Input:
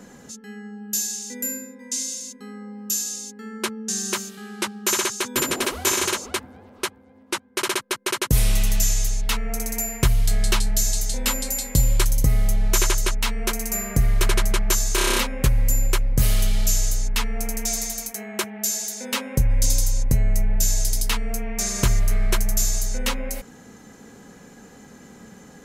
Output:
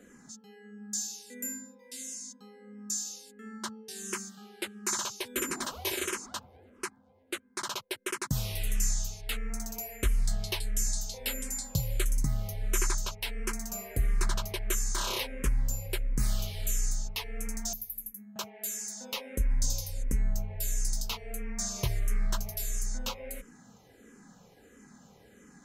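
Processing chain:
0:17.73–0:18.36: drawn EQ curve 180 Hz 0 dB, 530 Hz −25 dB, 8,400 Hz −19 dB, 12,000 Hz +6 dB
frequency shifter mixed with the dry sound −1.5 Hz
level −7.5 dB

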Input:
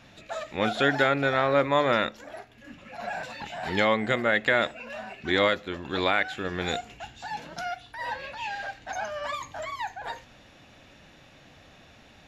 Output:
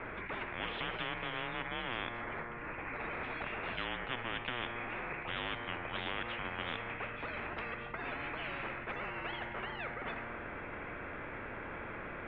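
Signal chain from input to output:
tuned comb filter 120 Hz, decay 1.2 s, harmonics all, mix 60%
single-sideband voice off tune −250 Hz 160–2,400 Hz
every bin compressed towards the loudest bin 10 to 1
level −3.5 dB

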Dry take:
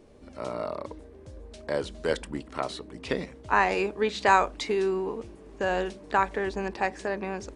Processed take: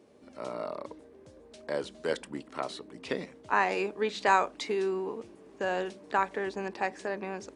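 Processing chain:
high-pass filter 160 Hz 12 dB per octave
level −3.5 dB

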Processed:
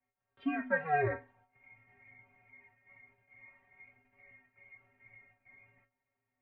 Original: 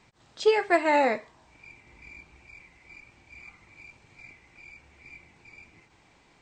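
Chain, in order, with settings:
noise gate −56 dBFS, range −17 dB
stiff-string resonator 130 Hz, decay 0.31 s, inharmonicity 0.008
single-sideband voice off tune −150 Hz 180–2,600 Hz
level +2.5 dB

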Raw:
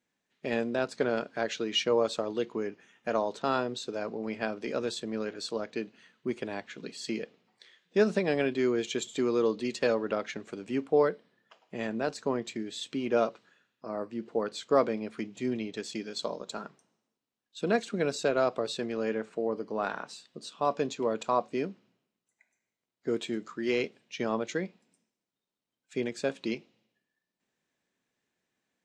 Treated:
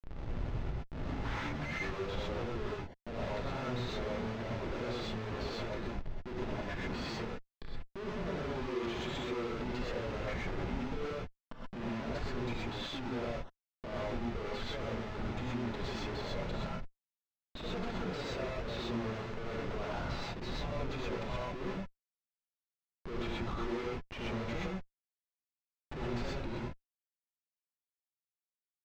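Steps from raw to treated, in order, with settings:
turntable start at the beginning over 2.33 s
low-shelf EQ 93 Hz +5 dB
downward compressor 10 to 1, threshold −34 dBFS, peak gain reduction 16 dB
brickwall limiter −30 dBFS, peak gain reduction 9 dB
comparator with hysteresis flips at −48 dBFS
high-frequency loss of the air 200 metres
reverb whose tail is shaped and stops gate 150 ms rising, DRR −4.5 dB
level +1 dB

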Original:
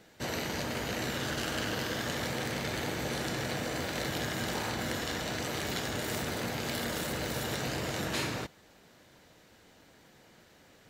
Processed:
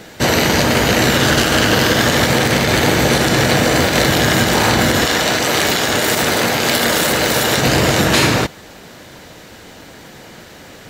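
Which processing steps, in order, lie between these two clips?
0:05.05–0:07.58: low-shelf EQ 210 Hz −10.5 dB
boost into a limiter +22 dB
level −1 dB

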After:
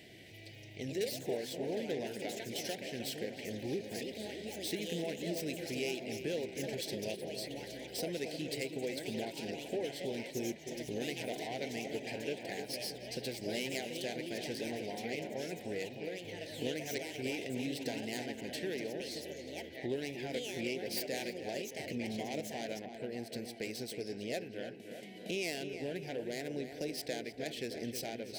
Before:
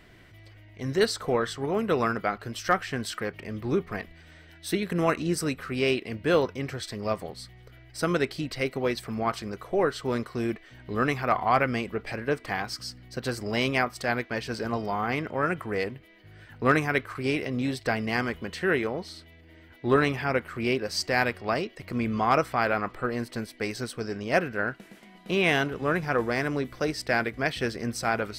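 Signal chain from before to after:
stylus tracing distortion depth 0.14 ms
high-pass filter 100 Hz
low-shelf EQ 280 Hz −7.5 dB
downward compressor 2.5 to 1, threshold −45 dBFS, peak gain reduction 18 dB
tape delay 310 ms, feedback 70%, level −7 dB, low-pass 2,300 Hz
delay with pitch and tempo change per echo 263 ms, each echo +4 semitones, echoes 3, each echo −6 dB
Butterworth band-reject 1,200 Hz, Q 0.78
level +4 dB

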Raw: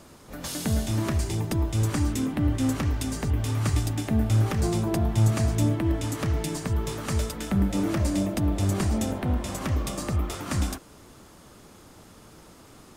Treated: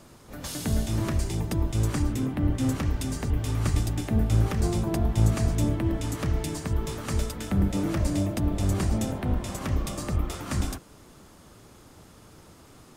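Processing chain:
sub-octave generator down 1 octave, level −3 dB
0:02.02–0:02.58: parametric band 7,000 Hz −4.5 dB 2.2 octaves
level −2 dB

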